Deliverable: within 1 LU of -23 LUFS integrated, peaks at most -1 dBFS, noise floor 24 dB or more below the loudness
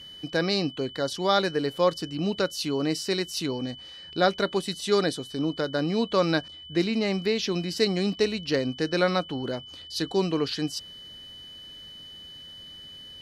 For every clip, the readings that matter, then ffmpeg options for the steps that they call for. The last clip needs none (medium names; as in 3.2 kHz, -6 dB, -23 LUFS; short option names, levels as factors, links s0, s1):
steady tone 3 kHz; tone level -42 dBFS; loudness -27.0 LUFS; peak level -6.5 dBFS; loudness target -23.0 LUFS
-> -af "bandreject=f=3000:w=30"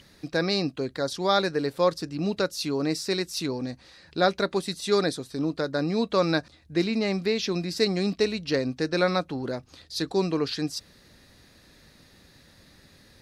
steady tone not found; loudness -27.0 LUFS; peak level -6.5 dBFS; loudness target -23.0 LUFS
-> -af "volume=1.58"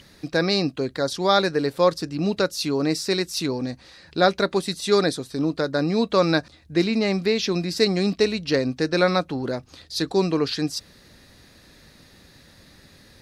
loudness -23.0 LUFS; peak level -2.5 dBFS; noise floor -52 dBFS